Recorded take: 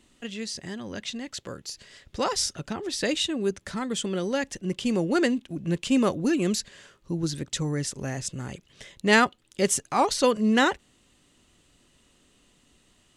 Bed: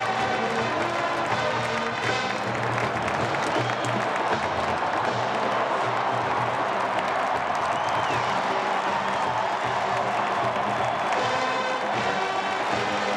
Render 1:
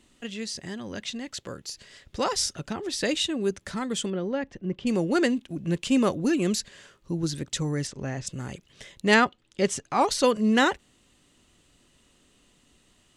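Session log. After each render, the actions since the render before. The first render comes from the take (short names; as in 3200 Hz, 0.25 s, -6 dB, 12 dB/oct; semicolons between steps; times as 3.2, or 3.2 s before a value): 4.1–4.87 tape spacing loss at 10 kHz 32 dB; 7.87–8.27 air absorption 110 m; 9.14–10.01 air absorption 73 m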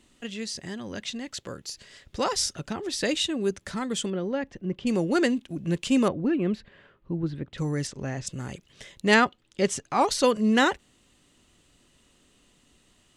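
6.08–7.58 air absorption 480 m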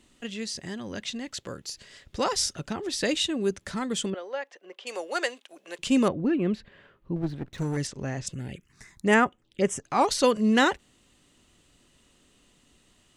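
4.14–5.79 HPF 530 Hz 24 dB/oct; 7.16–7.77 minimum comb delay 0.5 ms; 8.34–9.84 envelope phaser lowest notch 420 Hz, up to 4300 Hz, full sweep at -23 dBFS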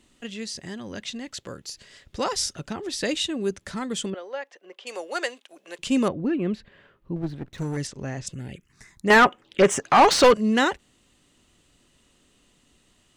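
9.1–10.34 overdrive pedal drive 25 dB, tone 2200 Hz, clips at -5.5 dBFS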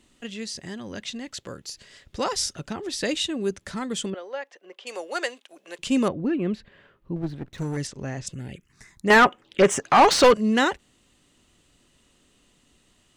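nothing audible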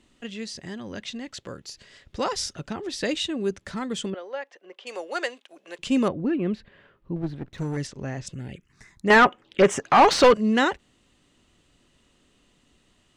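high shelf 8200 Hz -11 dB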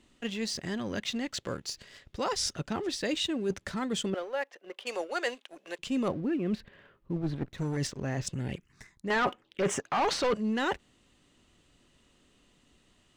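sample leveller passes 1; reverse; compressor 4:1, threshold -29 dBFS, peak gain reduction 15 dB; reverse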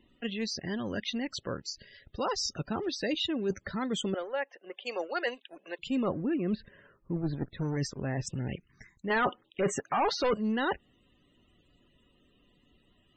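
loudest bins only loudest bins 64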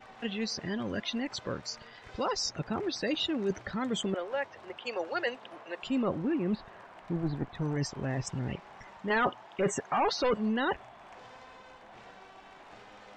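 add bed -26.5 dB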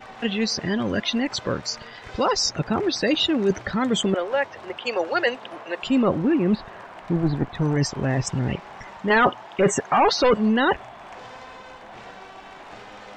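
gain +10 dB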